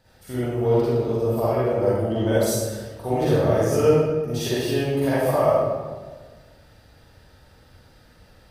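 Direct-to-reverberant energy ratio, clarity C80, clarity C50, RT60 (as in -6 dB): -11.0 dB, -1.5 dB, -6.0 dB, 1.4 s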